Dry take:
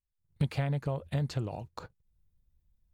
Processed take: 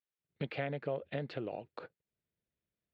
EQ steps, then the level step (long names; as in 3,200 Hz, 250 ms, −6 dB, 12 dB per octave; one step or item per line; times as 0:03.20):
band-pass filter 480–5,500 Hz
high-frequency loss of the air 470 metres
parametric band 980 Hz −14.5 dB 1.1 octaves
+9.5 dB